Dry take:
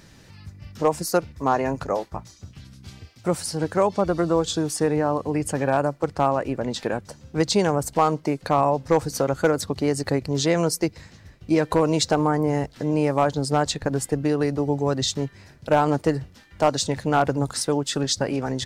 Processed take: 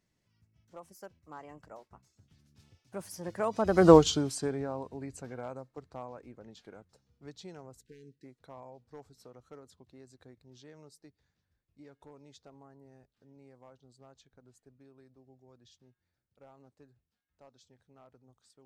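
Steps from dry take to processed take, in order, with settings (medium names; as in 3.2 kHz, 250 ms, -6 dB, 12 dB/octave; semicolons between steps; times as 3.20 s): Doppler pass-by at 3.91 s, 34 m/s, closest 2.6 m; spectral selection erased 7.80–8.25 s, 500–1500 Hz; trim +5.5 dB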